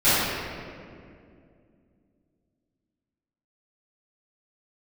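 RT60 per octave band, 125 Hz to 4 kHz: 3.1, 3.5, 2.7, 2.0, 1.9, 1.3 s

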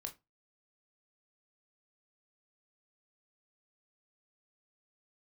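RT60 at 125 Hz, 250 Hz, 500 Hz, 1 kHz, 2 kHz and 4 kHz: 0.30, 0.25, 0.20, 0.20, 0.20, 0.15 s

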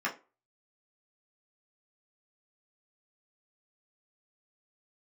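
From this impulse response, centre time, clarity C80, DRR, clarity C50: 15 ms, 21.0 dB, -4.0 dB, 14.0 dB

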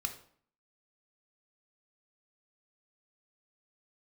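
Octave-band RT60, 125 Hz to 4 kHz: 0.60, 0.65, 0.55, 0.55, 0.50, 0.40 s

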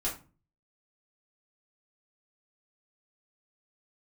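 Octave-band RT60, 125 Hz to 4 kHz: 0.65, 0.50, 0.35, 0.35, 0.30, 0.25 s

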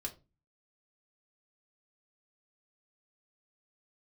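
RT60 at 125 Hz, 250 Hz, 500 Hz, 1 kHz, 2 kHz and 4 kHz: 0.55, 0.45, 0.30, 0.25, 0.20, 0.20 s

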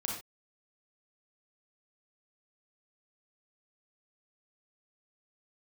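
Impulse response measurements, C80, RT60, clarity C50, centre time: 7.5 dB, not exponential, 2.0 dB, 40 ms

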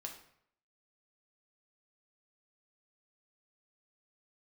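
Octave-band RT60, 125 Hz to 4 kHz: 0.70, 0.65, 0.70, 0.70, 0.60, 0.50 s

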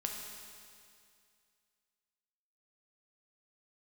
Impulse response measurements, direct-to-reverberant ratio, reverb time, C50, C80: 0.5 dB, 2.3 s, 2.5 dB, 3.5 dB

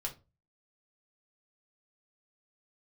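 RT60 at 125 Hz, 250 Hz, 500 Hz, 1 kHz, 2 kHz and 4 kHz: 0.50, 0.35, 0.30, 0.25, 0.20, 0.20 s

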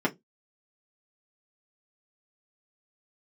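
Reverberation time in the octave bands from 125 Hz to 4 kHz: 0.30, 0.25, 0.20, 0.15, 0.15, 0.15 s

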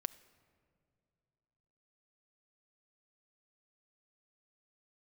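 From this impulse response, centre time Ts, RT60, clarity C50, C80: 4 ms, not exponential, 17.5 dB, 18.5 dB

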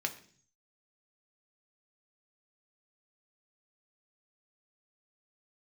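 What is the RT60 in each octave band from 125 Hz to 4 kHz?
0.90, 0.65, 0.55, 0.45, 0.50, 0.60 s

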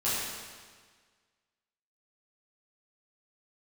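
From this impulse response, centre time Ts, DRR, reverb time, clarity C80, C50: 0.114 s, -11.0 dB, 1.6 s, 0.0 dB, -2.0 dB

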